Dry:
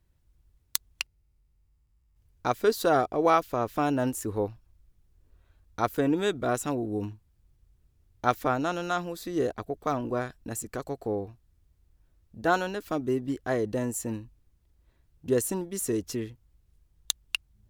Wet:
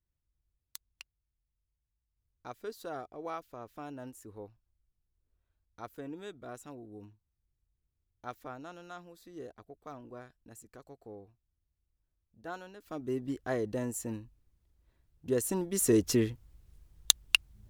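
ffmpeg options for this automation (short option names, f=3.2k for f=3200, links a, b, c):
-af "volume=5.5dB,afade=t=in:st=12.78:d=0.44:silence=0.237137,afade=t=in:st=15.39:d=0.72:silence=0.298538"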